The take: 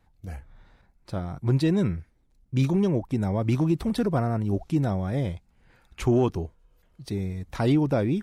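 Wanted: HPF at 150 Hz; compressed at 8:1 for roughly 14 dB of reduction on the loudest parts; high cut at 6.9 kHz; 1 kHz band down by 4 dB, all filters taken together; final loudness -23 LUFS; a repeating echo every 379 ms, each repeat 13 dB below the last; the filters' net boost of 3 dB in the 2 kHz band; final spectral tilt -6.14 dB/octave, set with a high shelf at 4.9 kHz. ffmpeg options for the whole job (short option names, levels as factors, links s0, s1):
-af "highpass=150,lowpass=6900,equalizer=f=1000:t=o:g=-7.5,equalizer=f=2000:t=o:g=5.5,highshelf=f=4900:g=4,acompressor=threshold=0.02:ratio=8,aecho=1:1:379|758|1137:0.224|0.0493|0.0108,volume=6.68"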